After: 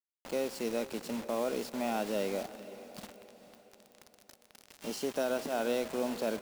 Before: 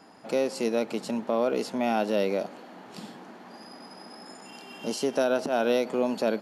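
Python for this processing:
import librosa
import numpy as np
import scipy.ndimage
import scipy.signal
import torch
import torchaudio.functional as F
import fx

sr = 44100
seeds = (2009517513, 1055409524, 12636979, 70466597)

y = fx.quant_dither(x, sr, seeds[0], bits=6, dither='none')
y = fx.echo_diffused(y, sr, ms=471, feedback_pct=48, wet_db=-14.5)
y = y * 10.0 ** (-7.5 / 20.0)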